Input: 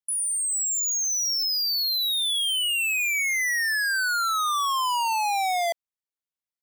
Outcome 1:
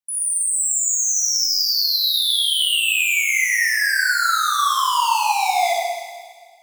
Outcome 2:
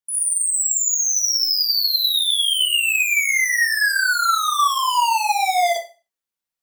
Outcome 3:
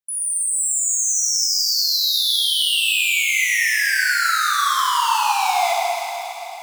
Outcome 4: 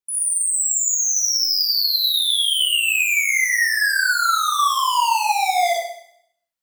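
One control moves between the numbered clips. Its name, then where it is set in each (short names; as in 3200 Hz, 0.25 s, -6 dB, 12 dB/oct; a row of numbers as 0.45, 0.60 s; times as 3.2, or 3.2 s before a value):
Schroeder reverb, RT60: 1.6, 0.32, 3.5, 0.69 s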